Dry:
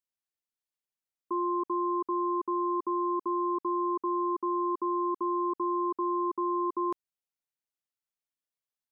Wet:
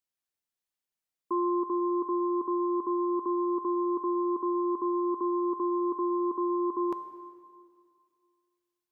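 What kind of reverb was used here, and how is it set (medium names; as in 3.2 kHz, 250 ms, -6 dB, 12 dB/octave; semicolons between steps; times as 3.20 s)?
plate-style reverb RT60 2.1 s, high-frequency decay 0.95×, DRR 10 dB; trim +1.5 dB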